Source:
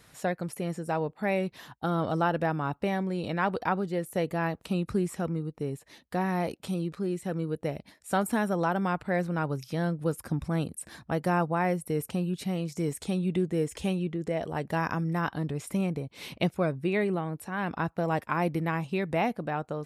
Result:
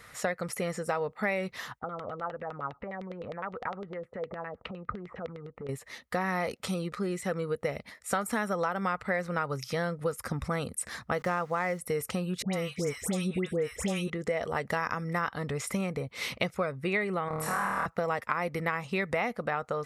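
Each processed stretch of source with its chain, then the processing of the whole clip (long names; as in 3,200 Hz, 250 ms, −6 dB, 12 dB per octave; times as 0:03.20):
0:01.79–0:05.69: high-shelf EQ 2,100 Hz −12 dB + downward compressor 12 to 1, threshold −38 dBFS + auto-filter low-pass saw down 9.8 Hz 460–3,600 Hz
0:11.18–0:11.79: running median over 9 samples + centre clipping without the shift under −49.5 dBFS
0:12.42–0:14.10: notch filter 4,400 Hz, Q 6.2 + all-pass dispersion highs, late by 114 ms, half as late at 1,400 Hz
0:17.28–0:17.86: parametric band 990 Hz +8.5 dB 1.4 octaves + downward compressor, threshold −34 dBFS + flutter between parallel walls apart 4.4 metres, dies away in 1.3 s
whole clip: thirty-one-band graphic EQ 160 Hz −6 dB, 315 Hz −10 dB, 500 Hz +5 dB, 1,250 Hz +10 dB, 2,000 Hz +10 dB; downward compressor, threshold −29 dBFS; dynamic equaliser 5,900 Hz, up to +6 dB, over −58 dBFS, Q 1.1; level +2.5 dB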